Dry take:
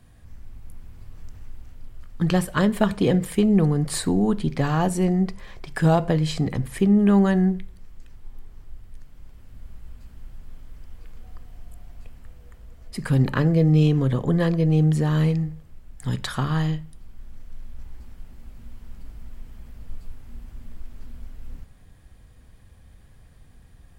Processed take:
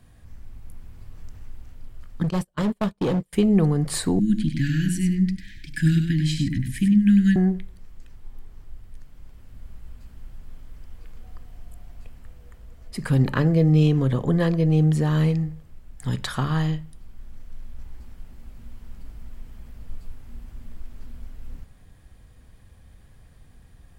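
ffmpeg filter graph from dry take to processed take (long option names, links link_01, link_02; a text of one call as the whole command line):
ffmpeg -i in.wav -filter_complex "[0:a]asettb=1/sr,asplit=3[link_01][link_02][link_03];[link_01]atrim=end=2.234[link_04];[link_02]atrim=start=2.23:end=3.33,asetpts=PTS-STARTPTS,afade=type=in:duration=0.004:curve=qsin,afade=type=out:start_time=1.096:duration=0.004:curve=qsin,equalizer=frequency=1800:width=1.3:gain=-6,agate=range=-36dB:threshold=-23dB:ratio=16:release=100:detection=peak,volume=19dB,asoftclip=hard,volume=-19dB[link_05];[link_03]atrim=start=3.326[link_06];[link_04][link_05]acrossfade=duration=0.004:curve1=hsin:curve2=qsin[link_07];[link_07][link_06]acrossfade=duration=0.004:curve1=qsin:curve2=hsin,asettb=1/sr,asplit=3[link_08][link_09][link_10];[link_08]atrim=end=4.194[link_11];[link_09]atrim=start=4.19:end=7.36,asetpts=PTS-STARTPTS,afade=type=in:duration=0.004:curve=qsin,afade=type=out:start_time=3.166:duration=0.004:curve=qsin,asuperstop=centerf=710:order=20:qfactor=0.58,aecho=1:1:98:0.473,atrim=end_sample=139797[link_12];[link_10]atrim=start=7.356[link_13];[link_11][link_12]acrossfade=duration=0.004:curve1=hsin:curve2=qsin[link_14];[link_14][link_13]acrossfade=duration=0.004:curve1=qsin:curve2=hsin" out.wav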